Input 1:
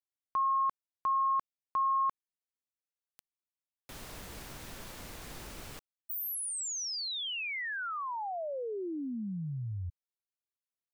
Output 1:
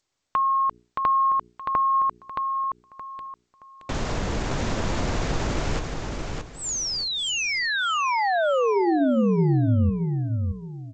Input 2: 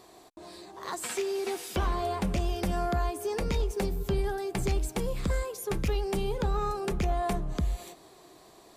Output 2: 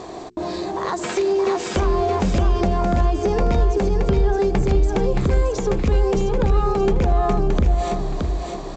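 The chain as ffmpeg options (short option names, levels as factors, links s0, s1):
-af "bandreject=f=60:t=h:w=6,bandreject=f=120:t=h:w=6,bandreject=f=180:t=h:w=6,bandreject=f=240:t=h:w=6,bandreject=f=300:t=h:w=6,bandreject=f=360:t=h:w=6,bandreject=f=420:t=h:w=6,apsyclip=14.1,equalizer=f=3900:t=o:w=2:g=-3,acompressor=threshold=0.0794:ratio=3:attack=18:release=69:knee=1:detection=rms,tiltshelf=f=970:g=3.5,aecho=1:1:622|1244|1866|2488:0.596|0.167|0.0467|0.0131,volume=0.668" -ar 16000 -c:a g722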